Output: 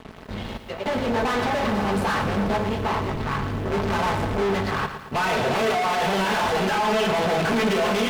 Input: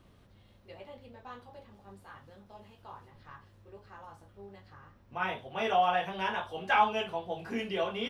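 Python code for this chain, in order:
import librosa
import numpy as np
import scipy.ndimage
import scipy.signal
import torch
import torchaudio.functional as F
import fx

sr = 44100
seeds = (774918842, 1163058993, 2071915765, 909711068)

y = fx.over_compress(x, sr, threshold_db=-35.0, ratio=-1.0)
y = fx.tremolo_random(y, sr, seeds[0], hz=3.5, depth_pct=95)
y = fx.fold_sine(y, sr, drive_db=12, ceiling_db=-20.0)
y = fx.low_shelf(y, sr, hz=250.0, db=12.0, at=(2.23, 4.42))
y = fx.fuzz(y, sr, gain_db=50.0, gate_db=-58.0)
y = fx.lowpass(y, sr, hz=2300.0, slope=6)
y = fx.low_shelf(y, sr, hz=120.0, db=-5.5)
y = y + 0.33 * np.pad(y, (int(4.6 * sr / 1000.0), 0))[:len(y)]
y = fx.echo_crushed(y, sr, ms=113, feedback_pct=55, bits=7, wet_db=-9.5)
y = F.gain(torch.from_numpy(y), -8.0).numpy()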